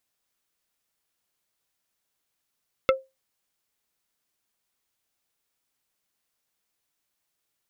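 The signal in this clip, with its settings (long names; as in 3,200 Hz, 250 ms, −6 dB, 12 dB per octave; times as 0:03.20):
struck wood plate, lowest mode 530 Hz, decay 0.22 s, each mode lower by 3 dB, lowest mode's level −13 dB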